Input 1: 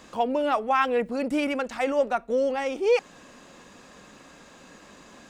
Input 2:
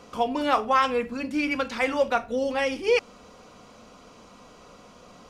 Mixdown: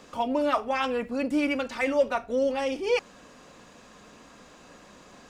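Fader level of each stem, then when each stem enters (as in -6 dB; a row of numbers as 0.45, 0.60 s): -3.5, -5.5 dB; 0.00, 0.00 s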